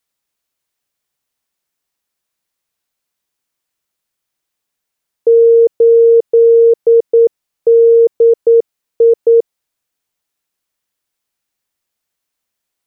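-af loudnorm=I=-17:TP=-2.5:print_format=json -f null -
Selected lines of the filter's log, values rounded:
"input_i" : "-10.0",
"input_tp" : "-3.6",
"input_lra" : "4.8",
"input_thresh" : "-20.2",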